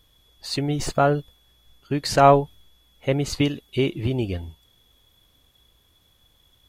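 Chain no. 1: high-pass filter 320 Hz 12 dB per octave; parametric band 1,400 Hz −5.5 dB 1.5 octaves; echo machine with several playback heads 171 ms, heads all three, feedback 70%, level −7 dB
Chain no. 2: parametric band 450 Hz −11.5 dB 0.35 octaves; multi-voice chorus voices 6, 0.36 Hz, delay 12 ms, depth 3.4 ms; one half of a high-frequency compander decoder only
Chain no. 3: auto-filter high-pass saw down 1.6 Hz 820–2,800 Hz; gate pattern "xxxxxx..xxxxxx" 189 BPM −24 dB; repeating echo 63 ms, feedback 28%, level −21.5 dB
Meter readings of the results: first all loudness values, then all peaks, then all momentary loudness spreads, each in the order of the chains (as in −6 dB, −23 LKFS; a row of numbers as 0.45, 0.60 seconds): −23.0, −26.5, −23.5 LKFS; −3.5, −5.5, −4.0 dBFS; 19, 17, 23 LU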